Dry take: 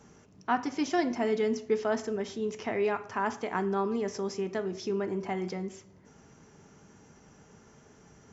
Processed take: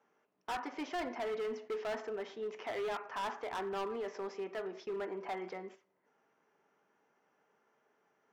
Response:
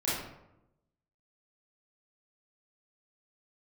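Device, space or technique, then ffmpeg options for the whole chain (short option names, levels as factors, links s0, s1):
walkie-talkie: -af "highpass=510,lowpass=2500,asoftclip=type=hard:threshold=0.0224,agate=range=0.282:threshold=0.00316:ratio=16:detection=peak,volume=0.891"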